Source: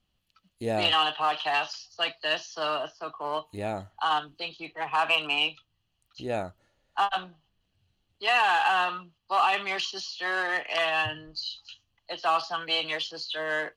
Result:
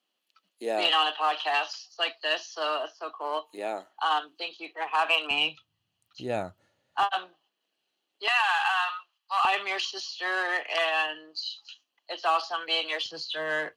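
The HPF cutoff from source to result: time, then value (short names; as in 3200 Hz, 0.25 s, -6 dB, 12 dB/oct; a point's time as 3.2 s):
HPF 24 dB/oct
300 Hz
from 5.31 s 95 Hz
from 7.03 s 320 Hz
from 8.28 s 870 Hz
from 9.45 s 310 Hz
from 13.06 s 92 Hz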